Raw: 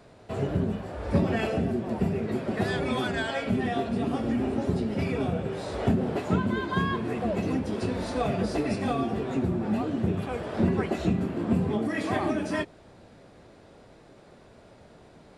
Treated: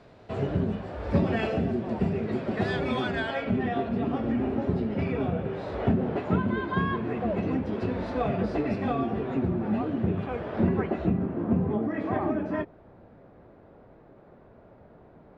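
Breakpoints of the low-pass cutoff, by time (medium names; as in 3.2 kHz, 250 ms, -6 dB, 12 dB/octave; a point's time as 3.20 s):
2.93 s 4.6 kHz
3.54 s 2.6 kHz
10.58 s 2.6 kHz
11.25 s 1.4 kHz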